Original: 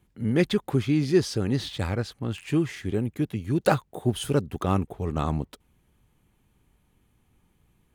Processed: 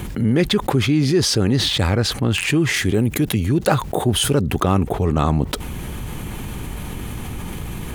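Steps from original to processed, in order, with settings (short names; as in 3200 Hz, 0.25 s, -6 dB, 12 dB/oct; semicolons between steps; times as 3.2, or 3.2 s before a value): 2.74–3.4 high shelf 4800 Hz +7 dB; fast leveller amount 70%; gain +1.5 dB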